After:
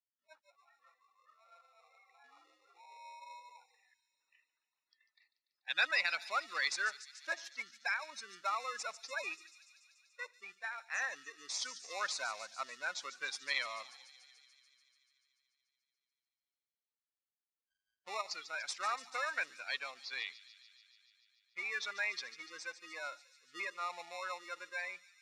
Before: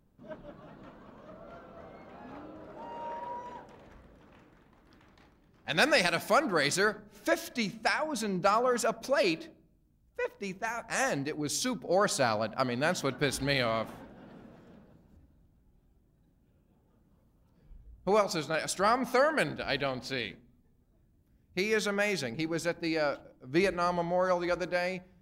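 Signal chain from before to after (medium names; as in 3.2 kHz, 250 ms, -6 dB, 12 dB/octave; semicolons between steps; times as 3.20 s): spectral noise reduction 18 dB; spectral gate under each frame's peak -15 dB strong; in parallel at -10 dB: sample-and-hold 28×; on the sum: Butterworth band-pass 2.9 kHz, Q 0.63; feedback echo behind a high-pass 145 ms, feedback 75%, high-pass 4.7 kHz, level -9 dB; trim -2.5 dB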